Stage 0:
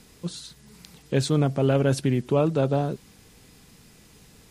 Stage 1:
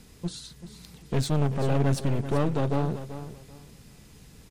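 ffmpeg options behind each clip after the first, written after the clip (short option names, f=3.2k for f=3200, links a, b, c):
-filter_complex "[0:a]lowshelf=f=170:g=7.5,aeval=exprs='clip(val(0),-1,0.0355)':c=same,asplit=2[a][b];[b]aecho=0:1:386|772|1158:0.251|0.0578|0.0133[c];[a][c]amix=inputs=2:normalize=0,volume=-2dB"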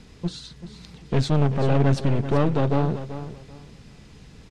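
-af "lowpass=5.1k,volume=4.5dB"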